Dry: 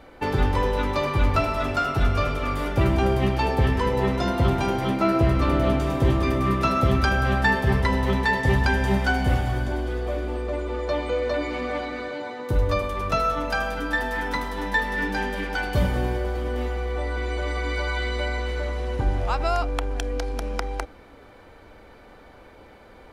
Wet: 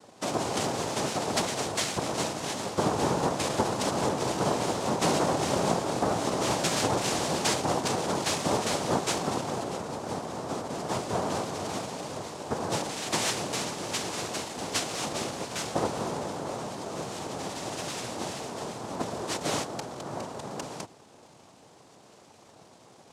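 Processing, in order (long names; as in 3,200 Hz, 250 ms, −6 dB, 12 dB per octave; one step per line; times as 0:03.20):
low-pass filter 1,700 Hz
cochlear-implant simulation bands 2
level −4.5 dB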